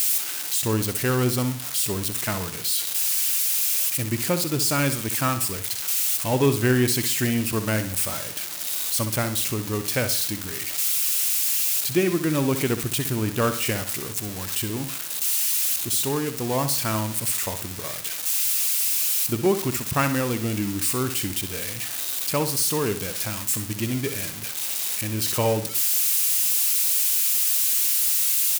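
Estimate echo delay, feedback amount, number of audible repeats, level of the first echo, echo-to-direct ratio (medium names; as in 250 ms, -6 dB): 64 ms, 38%, 3, -10.5 dB, -10.0 dB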